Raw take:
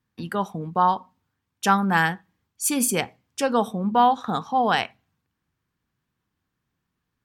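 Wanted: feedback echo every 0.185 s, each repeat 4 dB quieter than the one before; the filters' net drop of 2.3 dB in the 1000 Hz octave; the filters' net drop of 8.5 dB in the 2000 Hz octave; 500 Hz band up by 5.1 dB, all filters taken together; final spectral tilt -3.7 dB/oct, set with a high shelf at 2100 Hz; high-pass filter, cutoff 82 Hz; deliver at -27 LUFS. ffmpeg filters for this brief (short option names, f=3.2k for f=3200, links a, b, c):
-af "highpass=82,equalizer=f=500:t=o:g=8,equalizer=f=1k:t=o:g=-4,equalizer=f=2k:t=o:g=-5.5,highshelf=f=2.1k:g=-9,aecho=1:1:185|370|555|740|925|1110|1295|1480|1665:0.631|0.398|0.25|0.158|0.0994|0.0626|0.0394|0.0249|0.0157,volume=-4.5dB"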